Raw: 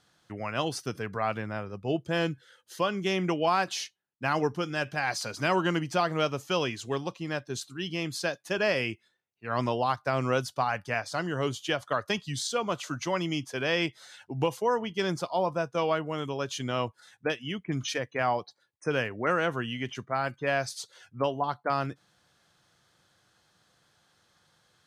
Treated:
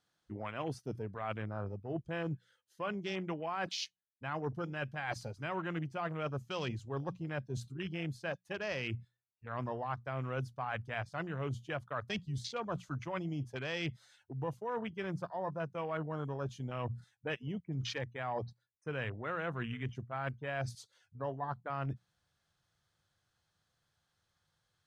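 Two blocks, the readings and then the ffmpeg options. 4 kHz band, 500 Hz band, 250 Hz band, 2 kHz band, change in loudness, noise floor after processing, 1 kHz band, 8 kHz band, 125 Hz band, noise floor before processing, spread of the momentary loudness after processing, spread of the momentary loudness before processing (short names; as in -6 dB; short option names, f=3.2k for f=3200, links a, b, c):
-11.5 dB, -10.5 dB, -8.5 dB, -9.5 dB, -9.5 dB, -82 dBFS, -10.5 dB, -14.5 dB, -3.5 dB, -71 dBFS, 4 LU, 8 LU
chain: -af "bandreject=f=60:t=h:w=6,bandreject=f=120:t=h:w=6,bandreject=f=180:t=h:w=6,asubboost=boost=4:cutoff=120,afwtdn=0.0158,areverse,acompressor=threshold=-38dB:ratio=6,areverse,volume=2.5dB"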